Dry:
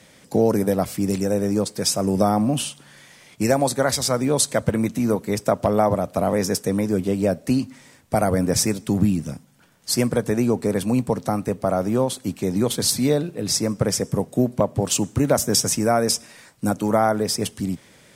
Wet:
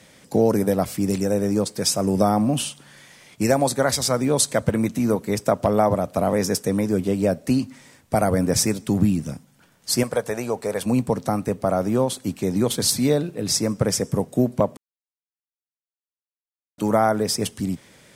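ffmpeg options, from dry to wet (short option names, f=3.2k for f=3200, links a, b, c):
-filter_complex "[0:a]asettb=1/sr,asplit=3[a][b][c];[a]atrim=end=10.034[d];[b]atrim=start=10.03:end=10.86,asetpts=PTS-STARTPTS,afade=t=in:d=0.004:c=qsin,afade=t=out:st=0.826:d=0.004:c=qsin,lowshelf=f=410:t=q:w=1.5:g=-9[e];[c]atrim=start=10.856[f];[d][e]acrossfade=d=0.004:c1=hsin:c2=qsin[g];[g][f]acrossfade=d=0.004:c1=qsin:c2=hsin,asplit=3[h][i][j];[h]atrim=end=14.77,asetpts=PTS-STARTPTS,afade=t=out:st=14.766:d=0.004:c=hsin[k];[i]atrim=start=14.77:end=16.78,asetpts=PTS-STARTPTS,volume=0[l];[j]atrim=start=16.78,asetpts=PTS-STARTPTS,afade=t=in:d=0.004:c=hsin[m];[k][l][m]concat=n=3:v=0:a=1"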